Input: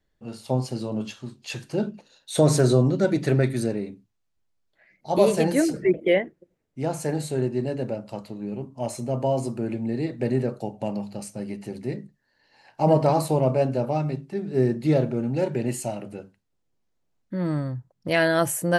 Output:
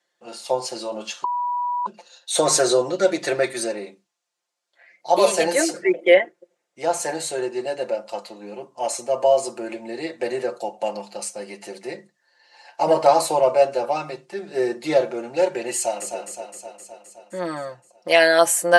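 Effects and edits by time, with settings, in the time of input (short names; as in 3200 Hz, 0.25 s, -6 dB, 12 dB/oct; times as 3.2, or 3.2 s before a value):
1.24–1.86 bleep 976 Hz -19.5 dBFS
15.74–16.19 echo throw 0.26 s, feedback 65%, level -7 dB
whole clip: Chebyshev band-pass 620–7800 Hz, order 2; high shelf 6200 Hz +6 dB; comb 5.7 ms, depth 70%; gain +6 dB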